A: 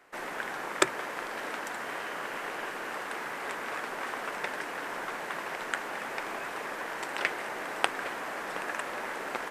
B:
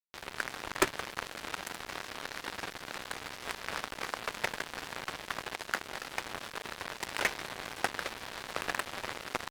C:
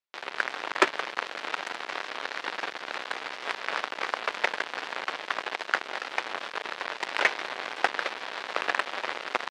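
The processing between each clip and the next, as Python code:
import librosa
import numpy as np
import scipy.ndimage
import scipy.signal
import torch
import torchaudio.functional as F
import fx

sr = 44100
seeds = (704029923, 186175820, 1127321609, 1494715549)

y1 = fx.fuzz(x, sr, gain_db=25.0, gate_db=-33.0)
y1 = y1 * 10.0 ** (-4.5 / 20.0)
y2 = fx.bandpass_edges(y1, sr, low_hz=400.0, high_hz=4000.0)
y2 = y2 * 10.0 ** (7.5 / 20.0)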